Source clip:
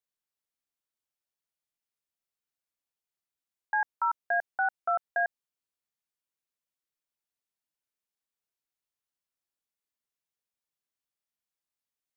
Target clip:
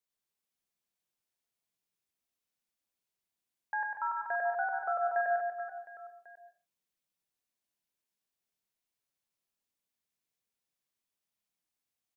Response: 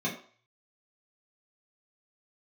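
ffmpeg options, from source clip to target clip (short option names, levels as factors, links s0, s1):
-filter_complex "[0:a]equalizer=f=1300:w=1.5:g=-2.5,alimiter=level_in=1.33:limit=0.0631:level=0:latency=1,volume=0.75,aecho=1:1:100|240|436|710.4|1095:0.631|0.398|0.251|0.158|0.1,asplit=2[s0][s1];[1:a]atrim=start_sample=2205,afade=t=out:st=0.24:d=0.01,atrim=end_sample=11025,adelay=115[s2];[s1][s2]afir=irnorm=-1:irlink=0,volume=0.178[s3];[s0][s3]amix=inputs=2:normalize=0"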